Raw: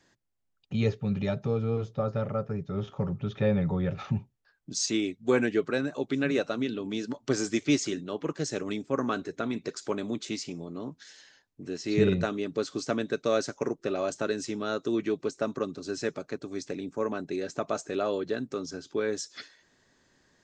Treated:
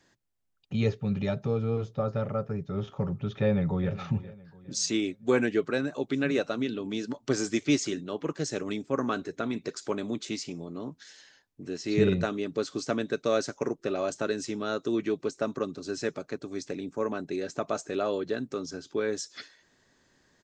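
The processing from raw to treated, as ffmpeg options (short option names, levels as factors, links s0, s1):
-filter_complex "[0:a]asplit=2[s0][s1];[s1]afade=t=in:st=3.32:d=0.01,afade=t=out:st=3.92:d=0.01,aecho=0:1:410|820|1230|1640:0.158489|0.0633957|0.0253583|0.0101433[s2];[s0][s2]amix=inputs=2:normalize=0"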